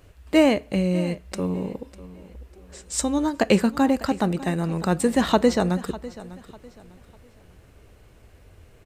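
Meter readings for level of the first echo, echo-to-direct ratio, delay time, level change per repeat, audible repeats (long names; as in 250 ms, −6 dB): −17.5 dB, −17.0 dB, 599 ms, −10.0 dB, 2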